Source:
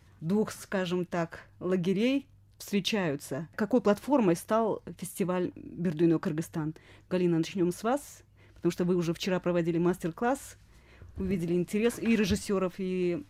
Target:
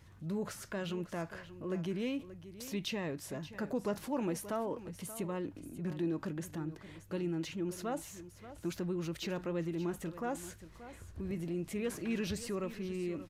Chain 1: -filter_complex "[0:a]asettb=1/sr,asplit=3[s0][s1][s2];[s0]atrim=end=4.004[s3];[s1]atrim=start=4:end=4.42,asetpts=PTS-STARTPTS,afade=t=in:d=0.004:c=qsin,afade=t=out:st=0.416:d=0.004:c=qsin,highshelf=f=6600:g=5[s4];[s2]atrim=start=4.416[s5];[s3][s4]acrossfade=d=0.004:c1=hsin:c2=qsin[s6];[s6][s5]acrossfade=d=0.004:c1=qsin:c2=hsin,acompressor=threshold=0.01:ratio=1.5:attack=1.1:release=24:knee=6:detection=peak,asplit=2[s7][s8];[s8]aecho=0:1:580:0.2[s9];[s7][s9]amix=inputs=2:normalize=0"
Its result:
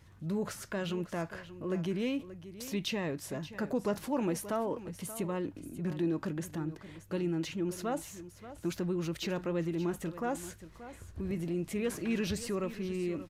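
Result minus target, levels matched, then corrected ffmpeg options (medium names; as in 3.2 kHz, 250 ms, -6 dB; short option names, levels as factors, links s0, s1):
compression: peak gain reduction -3 dB
-filter_complex "[0:a]asettb=1/sr,asplit=3[s0][s1][s2];[s0]atrim=end=4.004[s3];[s1]atrim=start=4:end=4.42,asetpts=PTS-STARTPTS,afade=t=in:d=0.004:c=qsin,afade=t=out:st=0.416:d=0.004:c=qsin,highshelf=f=6600:g=5[s4];[s2]atrim=start=4.416[s5];[s3][s4]acrossfade=d=0.004:c1=hsin:c2=qsin[s6];[s6][s5]acrossfade=d=0.004:c1=qsin:c2=hsin,acompressor=threshold=0.00335:ratio=1.5:attack=1.1:release=24:knee=6:detection=peak,asplit=2[s7][s8];[s8]aecho=0:1:580:0.2[s9];[s7][s9]amix=inputs=2:normalize=0"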